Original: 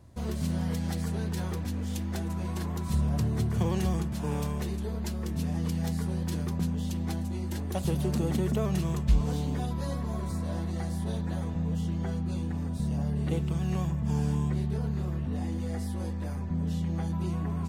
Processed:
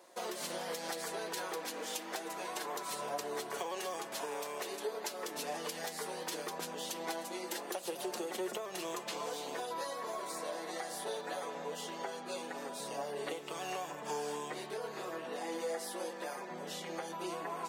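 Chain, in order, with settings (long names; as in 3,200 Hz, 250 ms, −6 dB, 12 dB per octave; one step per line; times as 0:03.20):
high-pass filter 430 Hz 24 dB per octave
downward compressor 12 to 1, threshold −42 dBFS, peak gain reduction 13 dB
flanger 0.12 Hz, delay 5.5 ms, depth 1.9 ms, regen +43%
level +10.5 dB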